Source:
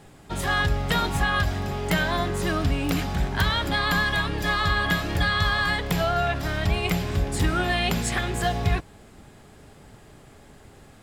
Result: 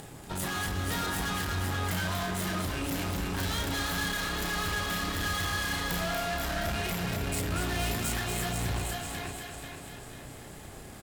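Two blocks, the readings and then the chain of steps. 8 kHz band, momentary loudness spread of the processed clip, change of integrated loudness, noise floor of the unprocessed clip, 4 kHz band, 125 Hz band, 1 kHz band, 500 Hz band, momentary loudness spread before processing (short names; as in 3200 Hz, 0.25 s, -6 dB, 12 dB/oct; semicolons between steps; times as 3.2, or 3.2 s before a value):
+1.5 dB, 12 LU, -7.0 dB, -50 dBFS, -5.5 dB, -7.5 dB, -7.5 dB, -7.5 dB, 4 LU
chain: thinning echo 0.491 s, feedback 36%, high-pass 420 Hz, level -8 dB; upward compressor, threshold -40 dBFS; doubler 33 ms -4 dB; tube stage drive 29 dB, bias 0.6; compressor, threshold -32 dBFS, peak gain reduction 3.5 dB; high shelf 8800 Hz +11.5 dB; on a send: echo with dull and thin repeats by turns 0.119 s, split 1100 Hz, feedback 77%, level -3.5 dB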